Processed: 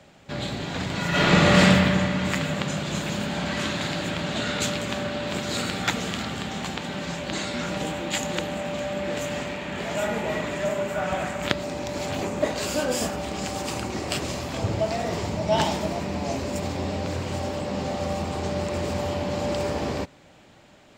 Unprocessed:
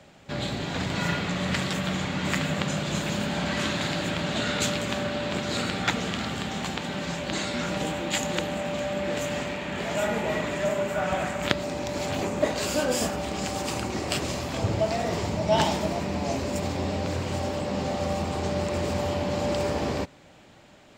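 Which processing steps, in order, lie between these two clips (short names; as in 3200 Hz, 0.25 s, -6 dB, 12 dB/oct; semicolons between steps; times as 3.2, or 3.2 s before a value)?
1.09–1.6 reverb throw, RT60 2.3 s, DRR -12 dB; 5.27–6.23 high shelf 8600 Hz +9.5 dB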